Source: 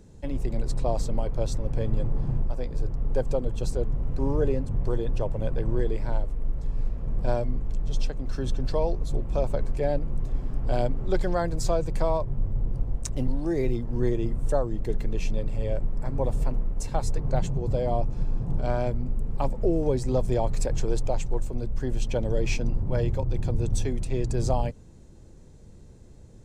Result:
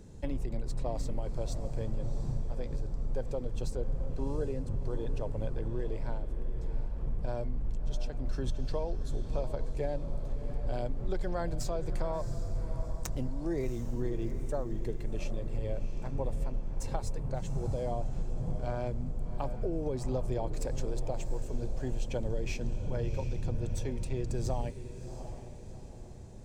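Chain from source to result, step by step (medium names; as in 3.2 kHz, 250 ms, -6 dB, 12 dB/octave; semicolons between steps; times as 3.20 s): tracing distortion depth 0.043 ms; compression, threshold -29 dBFS, peak gain reduction 11.5 dB; on a send: echo that smears into a reverb 716 ms, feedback 43%, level -10.5 dB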